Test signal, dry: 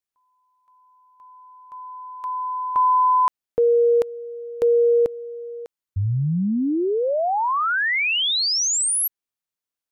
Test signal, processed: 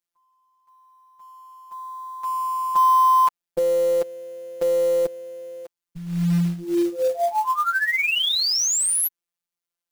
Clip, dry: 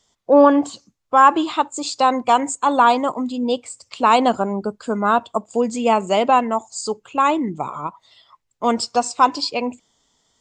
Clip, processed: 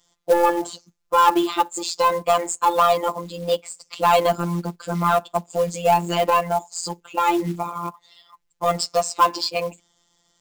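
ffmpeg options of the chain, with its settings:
-af "acontrast=42,afftfilt=real='hypot(re,im)*cos(PI*b)':imag='0':win_size=1024:overlap=0.75,acrusher=bits=5:mode=log:mix=0:aa=0.000001,volume=-2.5dB"

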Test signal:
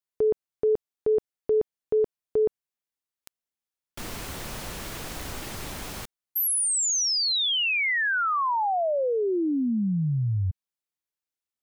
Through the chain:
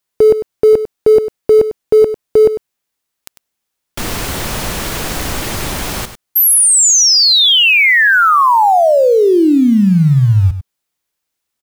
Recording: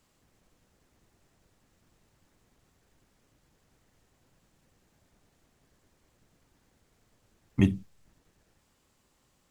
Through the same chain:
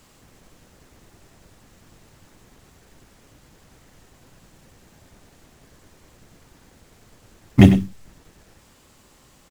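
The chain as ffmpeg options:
-filter_complex "[0:a]asplit=2[a][b];[b]acrusher=bits=3:mode=log:mix=0:aa=0.000001,volume=-11.5dB[c];[a][c]amix=inputs=2:normalize=0,aeval=exprs='0.398*sin(PI/2*1.41*val(0)/0.398)':c=same,aecho=1:1:99:0.266,volume=6.5dB"

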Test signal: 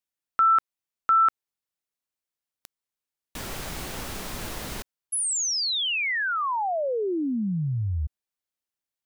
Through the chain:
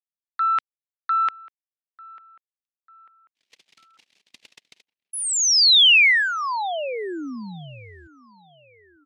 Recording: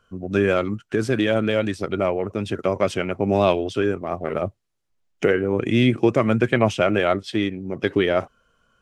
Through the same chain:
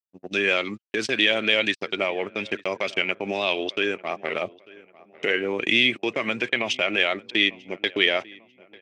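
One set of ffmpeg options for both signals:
-filter_complex "[0:a]agate=range=-59dB:threshold=-31dB:ratio=16:release=63:detection=peak,adynamicequalizer=threshold=0.0251:dfrequency=1100:dqfactor=0.86:tfrequency=1100:tqfactor=0.86:attack=5:release=100:ratio=0.375:range=2.5:mode=boostabove:tftype=bell,alimiter=limit=-12.5dB:level=0:latency=1:release=133,aexciter=amount=7:drive=7.1:freq=2k,highpass=240,lowpass=3.5k,asplit=2[a][b];[b]adelay=895,lowpass=f=2.3k:p=1,volume=-21.5dB,asplit=2[c][d];[d]adelay=895,lowpass=f=2.3k:p=1,volume=0.47,asplit=2[e][f];[f]adelay=895,lowpass=f=2.3k:p=1,volume=0.47[g];[a][c][e][g]amix=inputs=4:normalize=0,volume=-3dB"

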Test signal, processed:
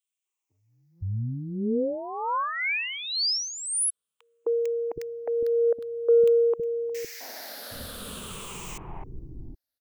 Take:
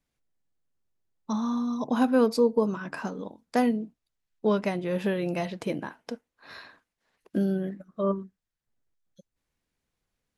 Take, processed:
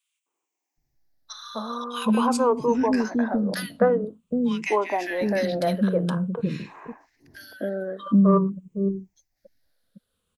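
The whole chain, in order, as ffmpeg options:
-filter_complex "[0:a]afftfilt=real='re*pow(10,13/40*sin(2*PI*(0.66*log(max(b,1)*sr/1024/100)/log(2)-(-0.48)*(pts-256)/sr)))':imag='im*pow(10,13/40*sin(2*PI*(0.66*log(max(b,1)*sr/1024/100)/log(2)-(-0.48)*(pts-256)/sr)))':win_size=1024:overlap=0.75,acrossover=split=340|1600[a][b][c];[b]adelay=260[d];[a]adelay=770[e];[e][d][c]amix=inputs=3:normalize=0,acontrast=46"

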